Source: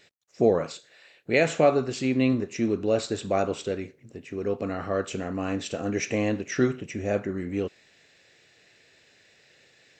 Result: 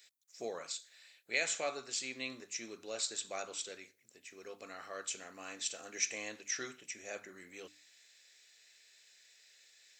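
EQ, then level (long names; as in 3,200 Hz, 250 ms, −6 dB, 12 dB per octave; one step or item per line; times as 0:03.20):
first difference
mains-hum notches 50/100/150/200/250/300 Hz
notch filter 2,800 Hz, Q 14
+3.0 dB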